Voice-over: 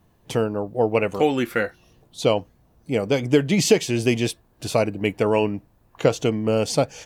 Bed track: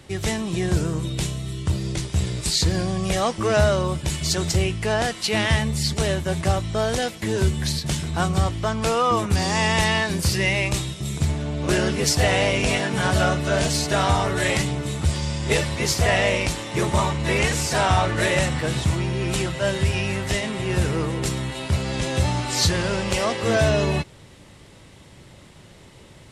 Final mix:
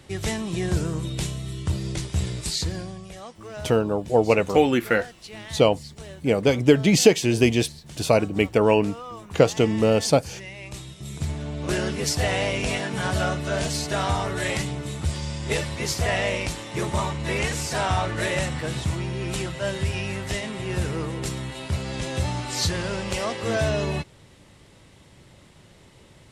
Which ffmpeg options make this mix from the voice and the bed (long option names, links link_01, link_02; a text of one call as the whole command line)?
ffmpeg -i stem1.wav -i stem2.wav -filter_complex "[0:a]adelay=3350,volume=1.5dB[link_01];[1:a]volume=11dB,afade=type=out:start_time=2.27:duration=0.82:silence=0.16788,afade=type=in:start_time=10.58:duration=0.85:silence=0.211349[link_02];[link_01][link_02]amix=inputs=2:normalize=0" out.wav